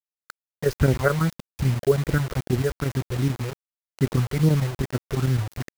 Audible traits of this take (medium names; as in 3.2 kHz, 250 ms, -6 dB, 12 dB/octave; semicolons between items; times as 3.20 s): phasing stages 6, 2.5 Hz, lowest notch 220–1200 Hz; chopped level 9.1 Hz, depth 60%, duty 85%; a quantiser's noise floor 6-bit, dither none